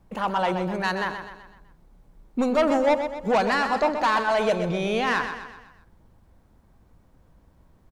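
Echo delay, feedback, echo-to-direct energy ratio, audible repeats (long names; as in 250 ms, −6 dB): 126 ms, 47%, −7.5 dB, 5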